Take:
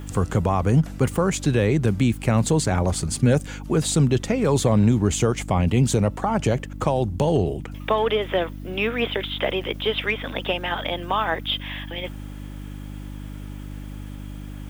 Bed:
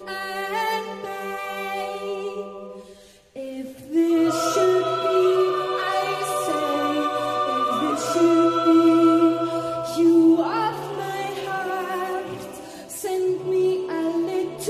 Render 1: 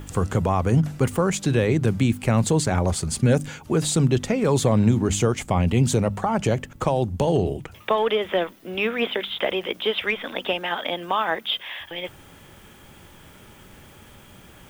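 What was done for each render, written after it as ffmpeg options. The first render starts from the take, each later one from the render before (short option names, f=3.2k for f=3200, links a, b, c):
-af "bandreject=f=50:t=h:w=4,bandreject=f=100:t=h:w=4,bandreject=f=150:t=h:w=4,bandreject=f=200:t=h:w=4,bandreject=f=250:t=h:w=4,bandreject=f=300:t=h:w=4"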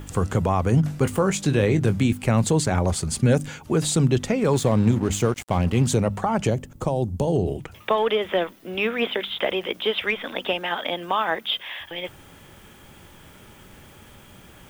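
-filter_complex "[0:a]asettb=1/sr,asplit=3[a][b][c];[a]atrim=end=0.824[d];[b]atrim=start=0.82:end=2.13,asetpts=PTS-STARTPTS,afade=t=in:d=0.004:c=qsin,afade=t=out:st=1.306:d=0.004:c=qsin,asplit=2[e][f];[f]adelay=20,volume=-10dB[g];[e][g]amix=inputs=2:normalize=0,atrim=end_sample=57771[h];[c]atrim=start=2.126[i];[d][h]acrossfade=d=0.004:c1=hsin:c2=qsin[j];[j][i]acrossfade=d=0.004:c1=qsin:c2=hsin,asettb=1/sr,asplit=3[k][l][m];[k]atrim=end=4.534[n];[l]atrim=start=4.53:end=5.87,asetpts=PTS-STARTPTS,afade=t=in:d=0.004:c=qsin,afade=t=out:st=1.336:d=0.004:c=qsin,aeval=exprs='sgn(val(0))*max(abs(val(0))-0.0168,0)':c=same[o];[m]atrim=start=5.866[p];[n][o]acrossfade=d=0.004:c1=hsin:c2=qsin[q];[q][p]acrossfade=d=0.004:c1=qsin:c2=hsin,asettb=1/sr,asplit=3[r][s][t];[r]atrim=end=6.504[u];[s]atrim=start=6.5:end=7.48,asetpts=PTS-STARTPTS,afade=t=in:d=0.004:c=qsin,afade=t=out:st=0.976:d=0.004:c=qsin,equalizer=f=2k:t=o:w=2.3:g=-10[v];[t]atrim=start=7.476[w];[u][v]acrossfade=d=0.004:c1=hsin:c2=qsin[x];[x][w]acrossfade=d=0.004:c1=qsin:c2=hsin"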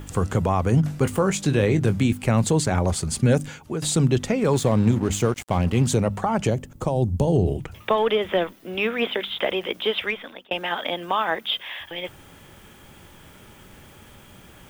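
-filter_complex "[0:a]asettb=1/sr,asplit=3[a][b][c];[a]atrim=end=6.954[d];[b]atrim=start=6.95:end=8.53,asetpts=PTS-STARTPTS,afade=t=in:d=0.004:c=qsin,afade=t=out:st=1.576:d=0.004:c=qsin,lowshelf=f=160:g=7[e];[c]atrim=start=8.526[f];[d][e]acrossfade=d=0.004:c1=hsin:c2=qsin[g];[g][f]acrossfade=d=0.004:c1=qsin:c2=hsin,asplit=3[h][i][j];[h]atrim=end=3.82,asetpts=PTS-STARTPTS,afade=t=out:st=3.39:d=0.43:silence=0.354813[k];[i]atrim=start=3.82:end=10.51,asetpts=PTS-STARTPTS,afade=t=in:d=0.004:c=hsin:silence=0.354813,afade=t=out:st=6.16:d=0.53[l];[j]atrim=start=10.51,asetpts=PTS-STARTPTS,afade=t=in:d=0.004:c=hsin[m];[k][l][m]concat=n=3:v=0:a=1"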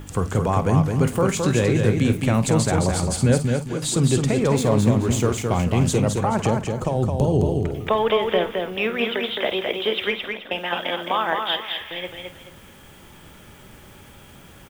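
-filter_complex "[0:a]asplit=2[a][b];[b]adelay=50,volume=-13.5dB[c];[a][c]amix=inputs=2:normalize=0,aecho=1:1:215|430|645|860:0.596|0.173|0.0501|0.0145"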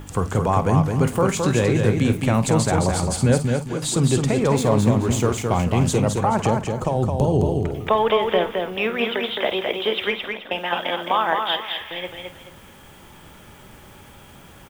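-af "equalizer=f=900:w=1.5:g=3.5"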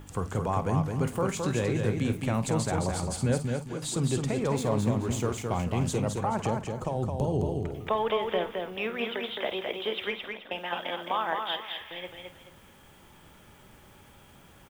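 -af "volume=-9dB"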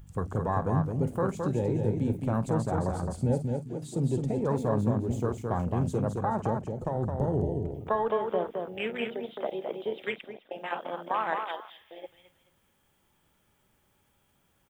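-af "afwtdn=0.0224,highshelf=f=6.8k:g=6.5"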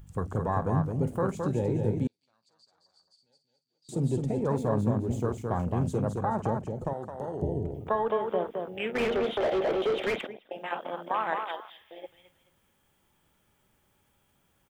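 -filter_complex "[0:a]asettb=1/sr,asplit=3[a][b][c];[a]atrim=end=2.074[d];[b]atrim=start=2.07:end=3.89,asetpts=PTS-STARTPTS,afade=t=in:d=0.004:c=qsin,afade=t=out:st=1.816:d=0.004:c=qsin,bandpass=f=4.6k:t=q:w=17[e];[c]atrim=start=3.886[f];[d][e]acrossfade=d=0.004:c1=hsin:c2=qsin[g];[g][f]acrossfade=d=0.004:c1=qsin:c2=hsin,asettb=1/sr,asplit=3[h][i][j];[h]atrim=end=6.934[k];[i]atrim=start=6.93:end=7.42,asetpts=PTS-STARTPTS,afade=t=in:d=0.004:c=qsin,afade=t=out:st=0.486:d=0.004:c=qsin,highpass=f=710:p=1[l];[j]atrim=start=7.416[m];[k][l]acrossfade=d=0.004:c1=hsin:c2=qsin[n];[n][m]acrossfade=d=0.004:c1=qsin:c2=hsin,asettb=1/sr,asplit=3[o][p][q];[o]atrim=end=8.954[r];[p]atrim=start=8.95:end=10.27,asetpts=PTS-STARTPTS,afade=t=in:d=0.004:c=qsin,afade=t=out:st=1.316:d=0.004:c=qsin,asplit=2[s][t];[t]highpass=f=720:p=1,volume=30dB,asoftclip=type=tanh:threshold=-18.5dB[u];[s][u]amix=inputs=2:normalize=0,lowpass=f=1.2k:p=1,volume=-6dB[v];[q]atrim=start=10.266[w];[r][v]acrossfade=d=0.004:c1=hsin:c2=qsin[x];[x][w]acrossfade=d=0.004:c1=qsin:c2=hsin"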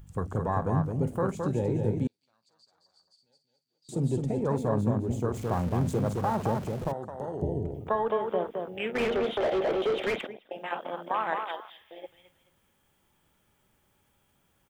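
-filter_complex "[0:a]asettb=1/sr,asplit=3[a][b][c];[a]atrim=end=5.344[d];[b]atrim=start=5.34:end=6.92,asetpts=PTS-STARTPTS,afade=t=in:d=0.004:c=qsin,afade=t=out:st=1.576:d=0.004:c=qsin,aeval=exprs='val(0)+0.5*0.0126*sgn(val(0))':c=same[e];[c]atrim=start=6.916[f];[d][e]acrossfade=d=0.004:c1=hsin:c2=qsin[g];[g][f]acrossfade=d=0.004:c1=qsin:c2=hsin"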